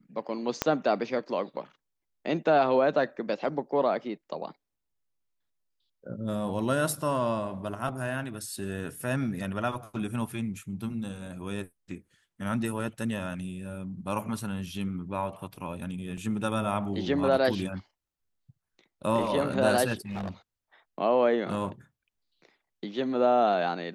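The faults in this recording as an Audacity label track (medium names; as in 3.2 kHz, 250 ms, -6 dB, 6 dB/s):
0.620000	0.620000	pop -9 dBFS
16.170000	16.170000	dropout 4.8 ms
20.010000	20.310000	clipped -31 dBFS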